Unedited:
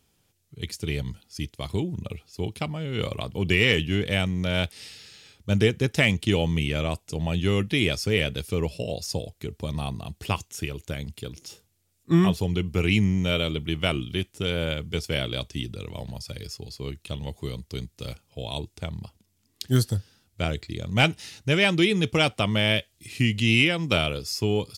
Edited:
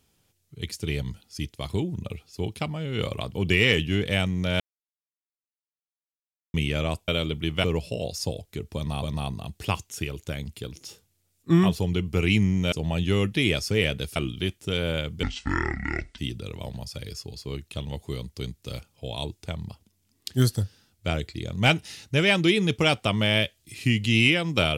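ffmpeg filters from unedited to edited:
ffmpeg -i in.wav -filter_complex "[0:a]asplit=10[link_01][link_02][link_03][link_04][link_05][link_06][link_07][link_08][link_09][link_10];[link_01]atrim=end=4.6,asetpts=PTS-STARTPTS,afade=type=out:start_time=4.596:duration=0.004:curve=hsin[link_11];[link_02]atrim=start=4.6:end=6.54,asetpts=PTS-STARTPTS,volume=0[link_12];[link_03]atrim=start=6.54:end=7.082,asetpts=PTS-STARTPTS,afade=type=in:duration=0.004:curve=hsin[link_13];[link_04]atrim=start=13.328:end=13.892[link_14];[link_05]atrim=start=8.518:end=9.912[link_15];[link_06]atrim=start=9.638:end=13.332[link_16];[link_07]atrim=start=7.078:end=8.522[link_17];[link_08]atrim=start=13.888:end=14.964[link_18];[link_09]atrim=start=14.96:end=15.52,asetpts=PTS-STARTPTS,asetrate=26019,aresample=44100[link_19];[link_10]atrim=start=15.516[link_20];[link_11][link_12][link_13]concat=n=3:v=0:a=1[link_21];[link_21][link_14]acrossfade=duration=0.004:curve1=hsin:curve2=hsin[link_22];[link_22][link_15]acrossfade=duration=0.004:curve1=hsin:curve2=hsin[link_23];[link_23][link_16]acrossfade=duration=0.004:curve1=hsin:curve2=hsin[link_24];[link_24][link_17]acrossfade=duration=0.004:curve1=hsin:curve2=hsin[link_25];[link_25][link_18]acrossfade=duration=0.004:curve1=hsin:curve2=hsin[link_26];[link_26][link_19]acrossfade=duration=0.004:curve1=hsin:curve2=hsin[link_27];[link_27][link_20]acrossfade=duration=0.004:curve1=hsin:curve2=hsin" out.wav

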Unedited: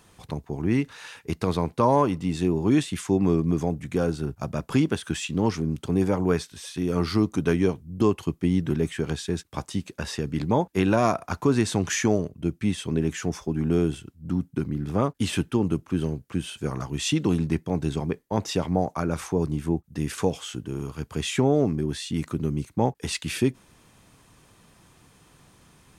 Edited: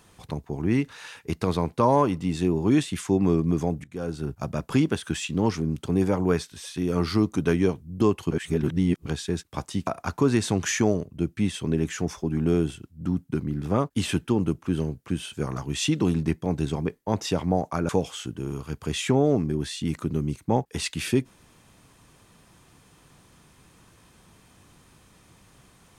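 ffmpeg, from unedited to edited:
ffmpeg -i in.wav -filter_complex "[0:a]asplit=6[link_01][link_02][link_03][link_04][link_05][link_06];[link_01]atrim=end=3.84,asetpts=PTS-STARTPTS,afade=type=out:start_time=3.836:duration=0.004:curve=hsin:silence=0.0841395[link_07];[link_02]atrim=start=3.84:end=8.312,asetpts=PTS-STARTPTS,afade=type=in:duration=0.48:silence=0.0841395[link_08];[link_03]atrim=start=8.308:end=9.062,asetpts=PTS-STARTPTS,areverse[link_09];[link_04]atrim=start=9.058:end=9.872[link_10];[link_05]atrim=start=11.108:end=19.132[link_11];[link_06]atrim=start=20.178[link_12];[link_07][link_08]concat=n=2:v=0:a=1[link_13];[link_13][link_09]acrossfade=duration=0.004:curve1=hsin:curve2=hsin[link_14];[link_14][link_10]acrossfade=duration=0.004:curve1=hsin:curve2=hsin[link_15];[link_15][link_11]acrossfade=duration=0.004:curve1=hsin:curve2=hsin[link_16];[link_16][link_12]acrossfade=duration=0.004:curve1=hsin:curve2=hsin" out.wav

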